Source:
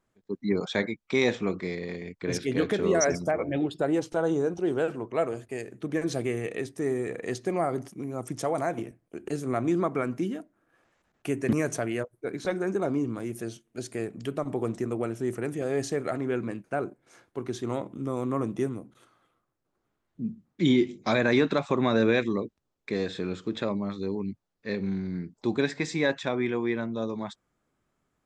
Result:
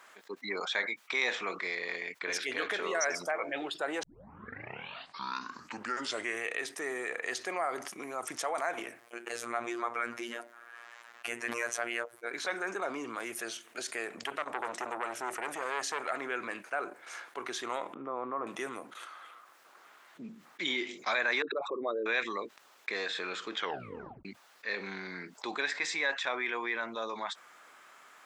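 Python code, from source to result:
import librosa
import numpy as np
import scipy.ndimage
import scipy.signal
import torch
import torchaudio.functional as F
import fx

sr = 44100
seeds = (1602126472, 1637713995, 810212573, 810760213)

y = fx.robotise(x, sr, hz=118.0, at=(9.0, 12.31))
y = fx.transformer_sat(y, sr, knee_hz=980.0, at=(14.21, 16.1))
y = fx.lowpass(y, sr, hz=1100.0, slope=12, at=(17.94, 18.47))
y = fx.envelope_sharpen(y, sr, power=3.0, at=(21.42, 22.06))
y = fx.edit(y, sr, fx.tape_start(start_s=4.03, length_s=2.41),
    fx.tape_stop(start_s=23.54, length_s=0.71), tone=tone)
y = scipy.signal.sosfilt(scipy.signal.butter(2, 1300.0, 'highpass', fs=sr, output='sos'), y)
y = fx.high_shelf(y, sr, hz=2900.0, db=-11.0)
y = fx.env_flatten(y, sr, amount_pct=50)
y = y * 10.0 ** (3.0 / 20.0)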